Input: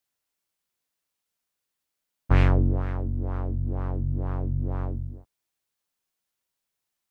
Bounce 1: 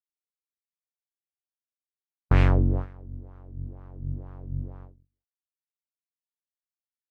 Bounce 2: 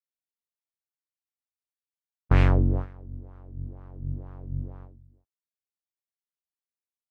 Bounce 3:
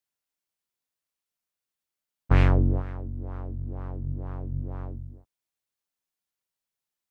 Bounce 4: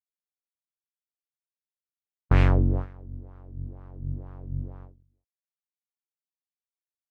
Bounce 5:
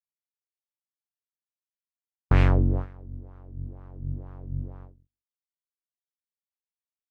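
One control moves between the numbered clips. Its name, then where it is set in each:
gate, range: -46, -21, -6, -33, -58 dB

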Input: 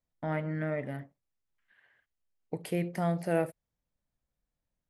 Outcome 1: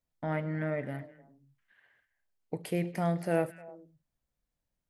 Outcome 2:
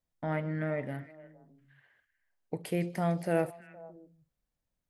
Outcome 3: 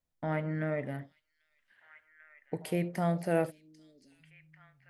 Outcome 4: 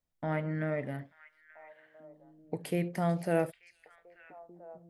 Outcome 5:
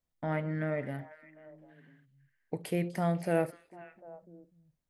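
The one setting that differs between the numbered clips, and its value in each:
delay with a stepping band-pass, time: 0.102, 0.155, 0.793, 0.442, 0.249 s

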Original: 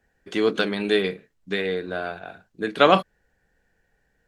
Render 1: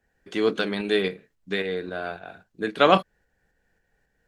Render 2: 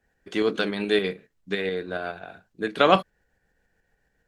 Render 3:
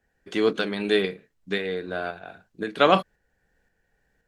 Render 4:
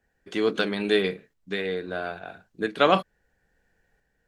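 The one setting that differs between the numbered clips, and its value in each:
tremolo, rate: 3.7, 7.1, 1.9, 0.75 Hz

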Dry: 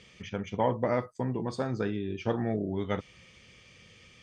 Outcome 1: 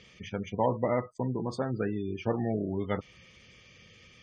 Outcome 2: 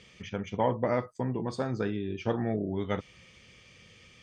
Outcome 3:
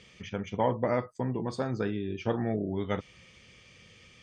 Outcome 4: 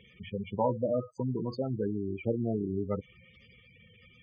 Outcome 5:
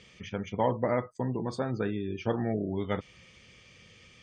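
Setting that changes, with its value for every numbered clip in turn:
spectral gate, under each frame's peak: -25, -60, -50, -10, -35 dB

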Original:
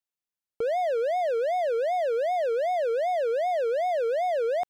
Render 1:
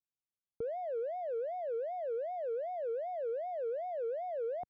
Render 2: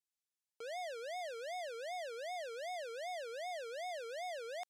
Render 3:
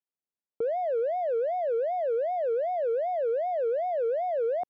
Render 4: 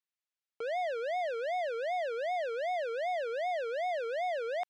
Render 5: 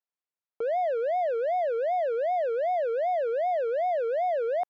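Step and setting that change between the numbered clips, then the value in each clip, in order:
band-pass, frequency: 100, 7100, 330, 2400, 860 Hz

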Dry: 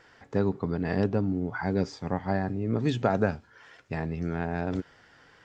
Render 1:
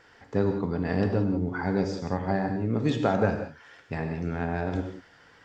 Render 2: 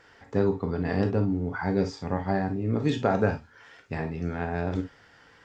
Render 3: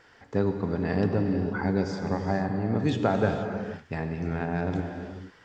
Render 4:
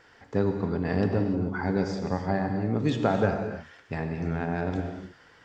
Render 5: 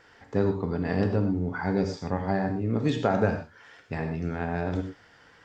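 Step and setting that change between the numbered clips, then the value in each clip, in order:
non-linear reverb, gate: 210, 80, 510, 330, 140 ms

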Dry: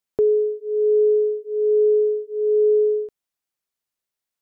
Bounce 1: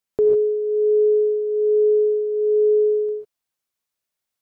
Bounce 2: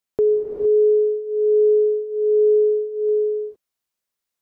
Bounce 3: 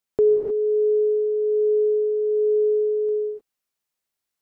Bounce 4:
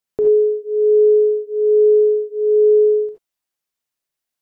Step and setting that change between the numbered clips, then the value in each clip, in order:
non-linear reverb, gate: 0.17, 0.48, 0.33, 0.1 s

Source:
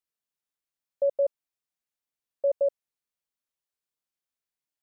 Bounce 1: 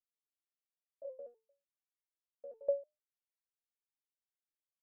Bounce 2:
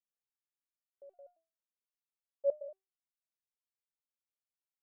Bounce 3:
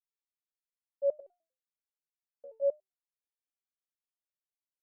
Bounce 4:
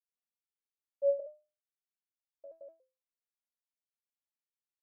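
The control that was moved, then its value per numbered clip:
stepped resonator, rate: 6.7, 4.4, 10, 2.5 Hz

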